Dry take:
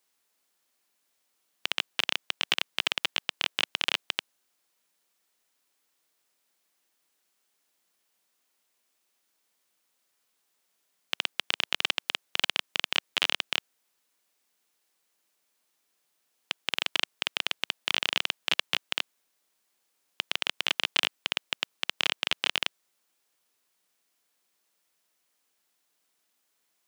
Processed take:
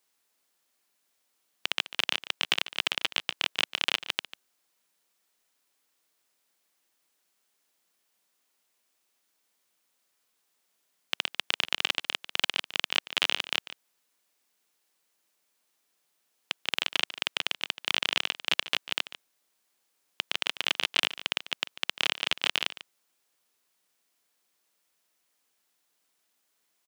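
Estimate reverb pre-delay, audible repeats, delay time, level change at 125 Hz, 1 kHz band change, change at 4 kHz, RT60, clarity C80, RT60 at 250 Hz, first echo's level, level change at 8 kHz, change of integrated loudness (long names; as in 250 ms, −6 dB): no reverb audible, 1, 145 ms, can't be measured, 0.0 dB, 0.0 dB, no reverb audible, no reverb audible, no reverb audible, −15.0 dB, 0.0 dB, 0.0 dB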